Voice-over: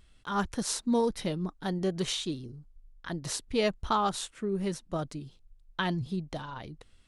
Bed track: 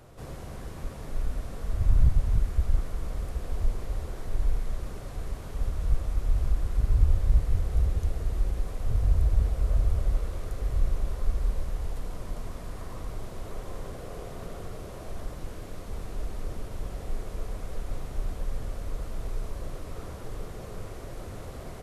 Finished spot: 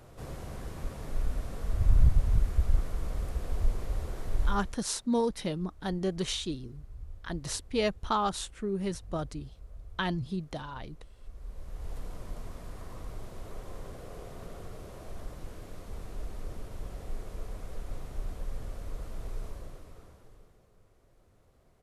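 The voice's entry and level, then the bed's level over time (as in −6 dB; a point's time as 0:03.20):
4.20 s, −1.0 dB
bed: 0:04.45 −1 dB
0:04.90 −23 dB
0:11.15 −23 dB
0:11.94 −5 dB
0:19.47 −5 dB
0:20.71 −25 dB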